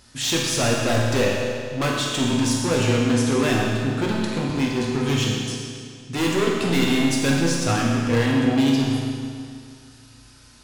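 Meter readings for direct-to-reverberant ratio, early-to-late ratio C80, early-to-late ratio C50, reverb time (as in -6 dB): -4.0 dB, 1.0 dB, -0.5 dB, 2.2 s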